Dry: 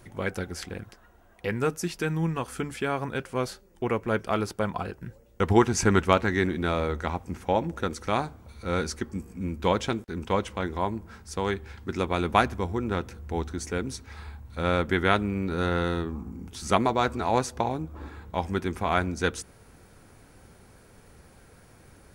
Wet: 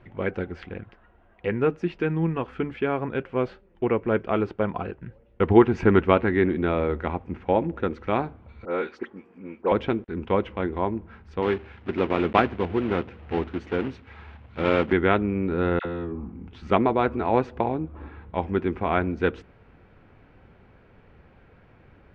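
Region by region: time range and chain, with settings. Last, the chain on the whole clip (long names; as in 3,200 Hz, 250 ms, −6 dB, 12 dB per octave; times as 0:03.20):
0:08.65–0:09.72: high-pass filter 360 Hz + high-shelf EQ 4,400 Hz −5 dB + all-pass dispersion highs, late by 65 ms, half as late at 2,000 Hz
0:11.42–0:14.93: one scale factor per block 3 bits + high-pass filter 83 Hz
0:15.79–0:16.32: all-pass dispersion lows, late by 62 ms, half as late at 970 Hz + downward compressor, threshold −29 dBFS
whole clip: Chebyshev low-pass filter 2,800 Hz, order 3; dynamic equaliser 360 Hz, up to +6 dB, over −38 dBFS, Q 0.93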